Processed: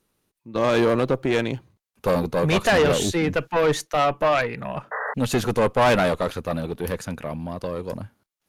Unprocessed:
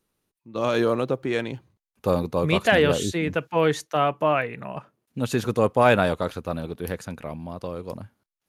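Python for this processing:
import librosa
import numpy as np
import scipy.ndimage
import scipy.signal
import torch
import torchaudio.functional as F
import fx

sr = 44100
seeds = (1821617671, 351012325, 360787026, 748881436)

y = fx.tube_stage(x, sr, drive_db=20.0, bias=0.45)
y = fx.spec_paint(y, sr, seeds[0], shape='noise', start_s=4.91, length_s=0.23, low_hz=420.0, high_hz=2000.0, level_db=-35.0)
y = F.gain(torch.from_numpy(y), 6.5).numpy()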